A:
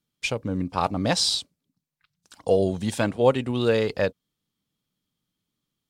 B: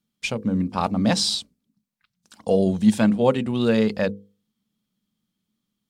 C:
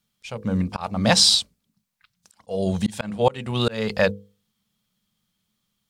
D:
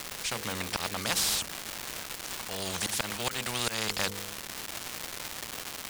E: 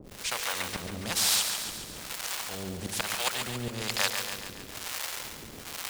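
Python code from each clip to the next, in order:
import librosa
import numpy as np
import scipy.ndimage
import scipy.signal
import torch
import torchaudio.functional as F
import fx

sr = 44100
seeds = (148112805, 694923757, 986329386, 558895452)

y1 = fx.peak_eq(x, sr, hz=210.0, db=15.0, octaves=0.31)
y1 = fx.hum_notches(y1, sr, base_hz=50, count=10)
y2 = fx.peak_eq(y1, sr, hz=270.0, db=-13.0, octaves=1.2)
y2 = fx.auto_swell(y2, sr, attack_ms=295.0)
y2 = F.gain(torch.from_numpy(y2), 7.5).numpy()
y3 = fx.rider(y2, sr, range_db=10, speed_s=2.0)
y3 = fx.dmg_crackle(y3, sr, seeds[0], per_s=560.0, level_db=-36.0)
y3 = fx.spectral_comp(y3, sr, ratio=4.0)
y3 = F.gain(torch.from_numpy(y3), -7.0).numpy()
y4 = fx.harmonic_tremolo(y3, sr, hz=1.1, depth_pct=100, crossover_hz=490.0)
y4 = fx.echo_feedback(y4, sr, ms=140, feedback_pct=60, wet_db=-7.5)
y4 = F.gain(torch.from_numpy(y4), 4.0).numpy()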